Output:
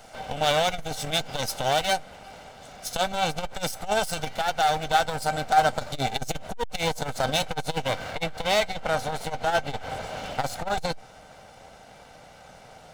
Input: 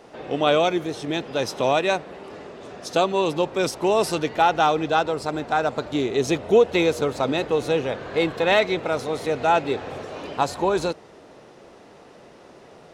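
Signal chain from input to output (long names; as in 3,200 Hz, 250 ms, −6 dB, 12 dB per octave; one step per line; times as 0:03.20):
lower of the sound and its delayed copy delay 1.4 ms
high-shelf EQ 4,000 Hz +11.5 dB, from 0:08.11 +5.5 dB
speech leveller within 3 dB 0.5 s
tuned comb filter 780 Hz, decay 0.16 s, harmonics all, mix 70%
saturating transformer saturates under 250 Hz
level +7.5 dB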